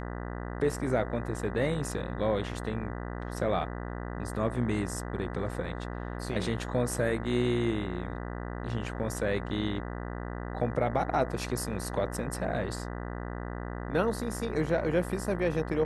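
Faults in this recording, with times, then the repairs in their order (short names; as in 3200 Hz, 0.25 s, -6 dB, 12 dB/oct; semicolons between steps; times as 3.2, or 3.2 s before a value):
buzz 60 Hz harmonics 33 -37 dBFS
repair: de-hum 60 Hz, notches 33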